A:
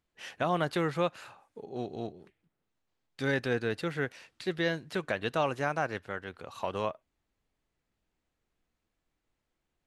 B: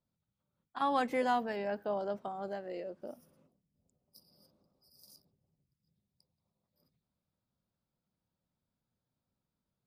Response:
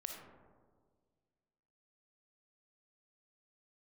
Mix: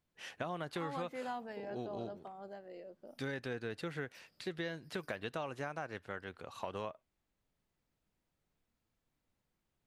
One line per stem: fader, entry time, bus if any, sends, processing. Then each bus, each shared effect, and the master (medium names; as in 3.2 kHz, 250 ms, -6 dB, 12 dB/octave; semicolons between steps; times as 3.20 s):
-4.0 dB, 0.00 s, no send, none
-2.0 dB, 0.00 s, no send, auto duck -7 dB, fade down 1.55 s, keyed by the first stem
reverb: none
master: compression 6:1, threshold -36 dBFS, peak gain reduction 9.5 dB